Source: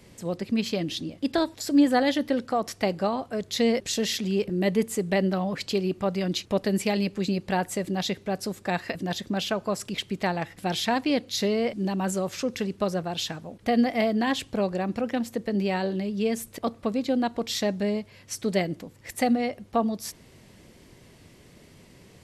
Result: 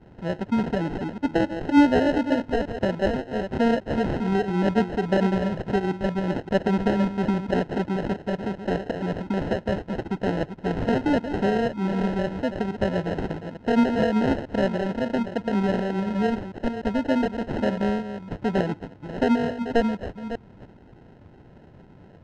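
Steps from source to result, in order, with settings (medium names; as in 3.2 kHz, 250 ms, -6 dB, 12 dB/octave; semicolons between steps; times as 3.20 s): chunks repeated in reverse 295 ms, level -9.5 dB; sample-and-hold 38×; tape spacing loss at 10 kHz 29 dB; trim +3.5 dB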